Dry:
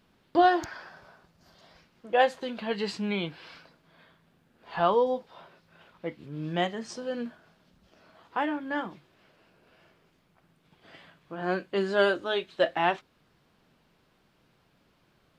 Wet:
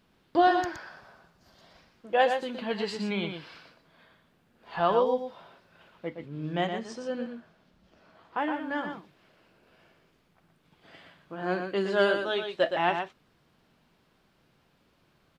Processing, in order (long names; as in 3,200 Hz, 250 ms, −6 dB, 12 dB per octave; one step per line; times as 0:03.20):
0:06.09–0:08.46: high-shelf EQ 4,200 Hz −6 dB
on a send: single-tap delay 118 ms −6.5 dB
on the sum: level −1 dB